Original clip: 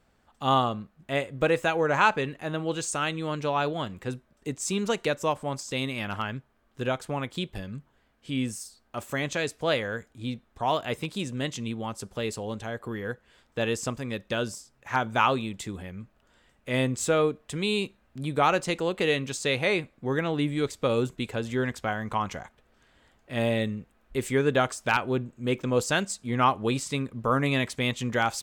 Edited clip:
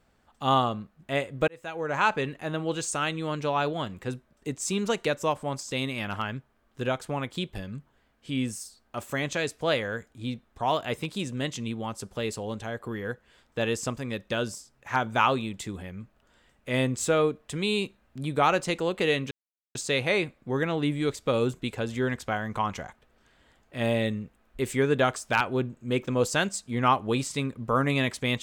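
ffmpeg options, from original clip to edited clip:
-filter_complex "[0:a]asplit=3[a][b][c];[a]atrim=end=1.48,asetpts=PTS-STARTPTS,afade=t=out:st=1.476:d=0.004:c=hsin[d];[b]atrim=start=1.48:end=19.31,asetpts=PTS-STARTPTS,afade=t=in:d=0.75,afade=t=out:st=17.826:d=0.004:c=hsin,apad=pad_dur=0.44[e];[c]atrim=start=19.31,asetpts=PTS-STARTPTS,afade=t=in:d=0.004:c=hsin[f];[d][e][f]concat=n=3:v=0:a=1"

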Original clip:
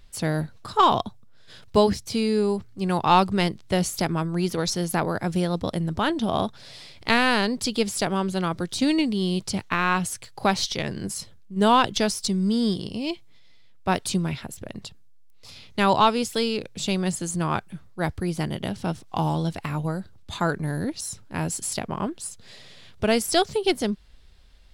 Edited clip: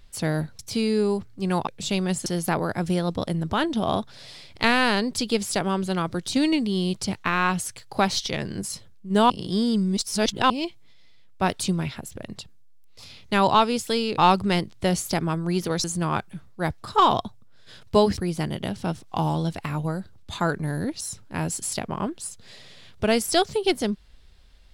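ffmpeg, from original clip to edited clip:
-filter_complex "[0:a]asplit=10[a][b][c][d][e][f][g][h][i][j];[a]atrim=end=0.592[k];[b]atrim=start=1.978:end=3.062[l];[c]atrim=start=16.638:end=17.232[m];[d]atrim=start=4.718:end=11.762[n];[e]atrim=start=11.758:end=12.962,asetpts=PTS-STARTPTS,areverse[o];[f]atrim=start=12.958:end=16.642[p];[g]atrim=start=3.058:end=4.722[q];[h]atrim=start=17.228:end=18.172[r];[i]atrim=start=0.588:end=1.982[s];[j]atrim=start=18.168[t];[k][l]acrossfade=d=0.004:c1=hsin:c2=hsin[u];[u][m]acrossfade=d=0.004:c1=hsin:c2=hsin[v];[v][n]acrossfade=d=0.004:c1=hsin:c2=hsin[w];[w][o]acrossfade=d=0.004:c1=hsin:c2=hsin[x];[x][p]acrossfade=d=0.004:c1=hsin:c2=hsin[y];[y][q]acrossfade=d=0.004:c1=hsin:c2=hsin[z];[z][r]acrossfade=d=0.004:c1=hsin:c2=hsin[aa];[aa][s]acrossfade=d=0.004:c1=hsin:c2=hsin[ab];[ab][t]acrossfade=d=0.004:c1=hsin:c2=hsin"

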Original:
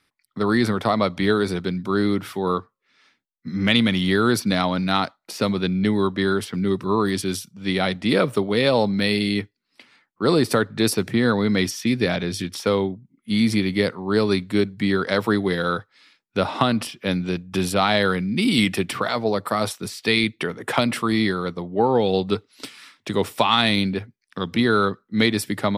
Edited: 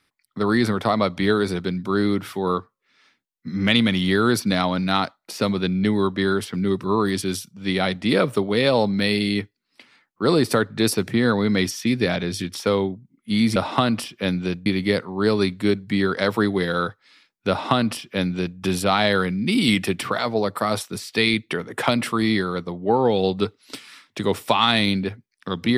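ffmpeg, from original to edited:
-filter_complex "[0:a]asplit=3[a][b][c];[a]atrim=end=13.562[d];[b]atrim=start=16.388:end=17.492[e];[c]atrim=start=13.558[f];[d][e]acrossfade=d=0.004:c1=hsin:c2=hsin[g];[g][f]acrossfade=d=0.004:c1=hsin:c2=hsin"

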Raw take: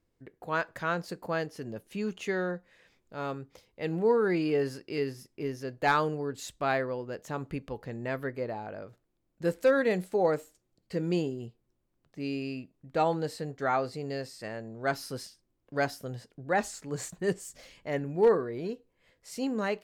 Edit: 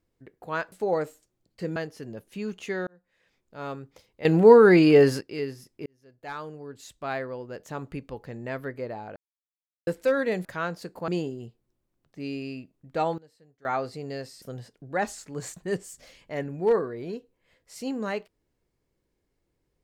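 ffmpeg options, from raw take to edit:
-filter_complex "[0:a]asplit=14[a][b][c][d][e][f][g][h][i][j][k][l][m][n];[a]atrim=end=0.722[o];[b]atrim=start=10.038:end=11.082[p];[c]atrim=start=1.348:end=2.46,asetpts=PTS-STARTPTS,afade=t=out:st=1.108:d=0.004:c=hsin[q];[d]atrim=start=2.46:end=3.842,asetpts=PTS-STARTPTS,afade=t=in:d=0.82[r];[e]atrim=start=3.838:end=4.802,asetpts=PTS-STARTPTS,volume=11.5dB[s];[f]atrim=start=4.798:end=5.45,asetpts=PTS-STARTPTS,afade=t=out:st=0.648:d=0.004:c=hsin[t];[g]atrim=start=5.45:end=8.75,asetpts=PTS-STARTPTS,afade=t=in:d=1.8,afade=t=out:st=3.296:d=0.004:c=hsin[u];[h]atrim=start=8.75:end=9.46,asetpts=PTS-STARTPTS,volume=0[v];[i]atrim=start=9.46:end=10.042,asetpts=PTS-STARTPTS,afade=t=in:d=0.004:c=hsin[w];[j]atrim=start=0.718:end=1.352[x];[k]atrim=start=11.078:end=13.18,asetpts=PTS-STARTPTS,afade=t=out:st=1.962:d=0.14:c=log:silence=0.0749894[y];[l]atrim=start=13.18:end=13.65,asetpts=PTS-STARTPTS,volume=-22.5dB[z];[m]atrim=start=13.65:end=14.422,asetpts=PTS-STARTPTS,afade=t=in:d=0.14:c=log:silence=0.0749894[aa];[n]atrim=start=15.978[ab];[o][p]acrossfade=d=0.004:c1=hsin:c2=hsin[ac];[q][r]concat=n=2:v=0:a=1[ad];[ac][ad]acrossfade=d=0.004:c1=hsin:c2=hsin[ae];[ae][s]acrossfade=d=0.004:c1=hsin:c2=hsin[af];[t][u][v][w]concat=n=4:v=0:a=1[ag];[af][ag]acrossfade=d=0.004:c1=hsin:c2=hsin[ah];[ah][x]acrossfade=d=0.004:c1=hsin:c2=hsin[ai];[y][z][aa]concat=n=3:v=0:a=1[aj];[ai][aj]acrossfade=d=0.004:c1=hsin:c2=hsin[ak];[ak][ab]acrossfade=d=0.004:c1=hsin:c2=hsin"

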